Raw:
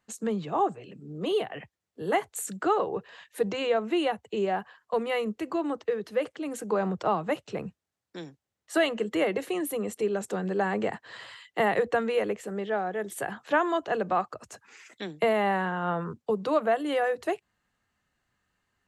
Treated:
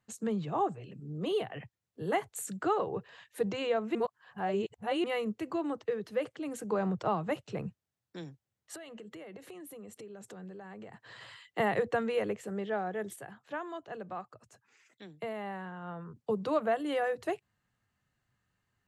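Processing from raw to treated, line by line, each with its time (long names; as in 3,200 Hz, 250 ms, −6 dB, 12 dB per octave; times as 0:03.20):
0:03.95–0:05.04: reverse
0:08.75–0:11.21: downward compressor, threshold −41 dBFS
0:13.16–0:16.16: clip gain −9.5 dB
whole clip: parametric band 120 Hz +10.5 dB 0.94 octaves; level −5 dB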